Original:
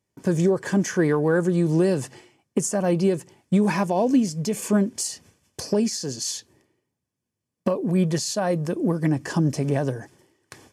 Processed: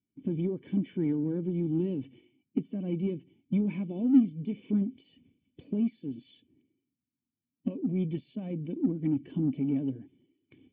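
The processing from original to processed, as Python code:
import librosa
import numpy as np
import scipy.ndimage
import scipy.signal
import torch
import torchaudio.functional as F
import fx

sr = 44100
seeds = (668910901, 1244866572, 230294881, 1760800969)

p1 = fx.spec_quant(x, sr, step_db=15)
p2 = fx.formant_cascade(p1, sr, vowel='i')
p3 = 10.0 ** (-28.0 / 20.0) * np.tanh(p2 / 10.0 ** (-28.0 / 20.0))
p4 = p2 + (p3 * librosa.db_to_amplitude(-12.0))
y = p4 * librosa.db_to_amplitude(-1.0)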